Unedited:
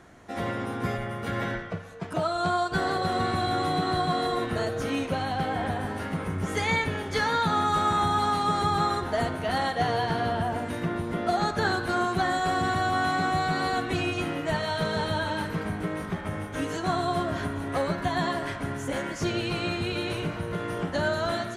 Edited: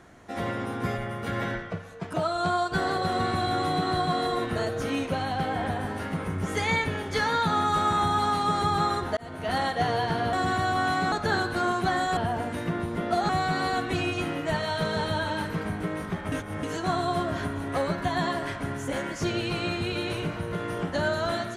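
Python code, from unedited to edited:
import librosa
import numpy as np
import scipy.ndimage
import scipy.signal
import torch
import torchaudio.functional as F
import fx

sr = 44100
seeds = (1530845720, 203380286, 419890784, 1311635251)

y = fx.edit(x, sr, fx.fade_in_span(start_s=9.17, length_s=0.35),
    fx.swap(start_s=10.33, length_s=1.12, other_s=12.5, other_length_s=0.79),
    fx.reverse_span(start_s=16.32, length_s=0.31), tone=tone)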